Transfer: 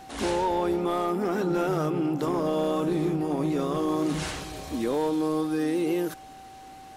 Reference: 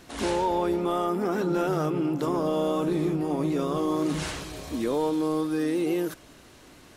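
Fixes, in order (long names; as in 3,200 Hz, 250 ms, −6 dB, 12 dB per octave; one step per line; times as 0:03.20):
clipped peaks rebuilt −19 dBFS
notch filter 770 Hz, Q 30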